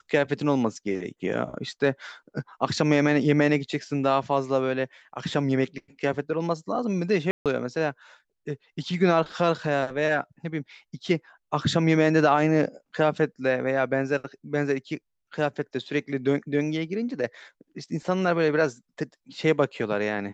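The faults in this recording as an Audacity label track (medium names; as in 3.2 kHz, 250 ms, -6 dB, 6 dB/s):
7.310000	7.460000	dropout 147 ms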